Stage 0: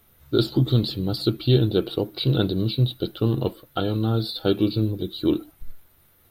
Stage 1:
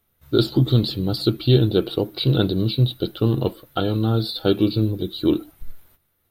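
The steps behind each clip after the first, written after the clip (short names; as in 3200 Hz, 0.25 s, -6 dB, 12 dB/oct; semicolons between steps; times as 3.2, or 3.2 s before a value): gate -53 dBFS, range -13 dB; gain +2.5 dB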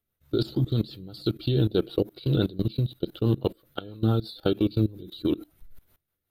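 level quantiser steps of 20 dB; rotary speaker horn 6 Hz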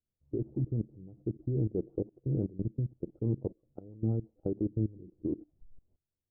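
Gaussian blur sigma 14 samples; gain -6.5 dB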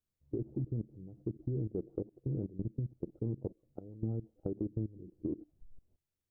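compressor, threshold -32 dBFS, peak gain reduction 7 dB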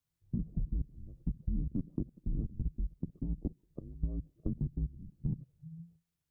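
frequency shift -170 Hz; gain +2.5 dB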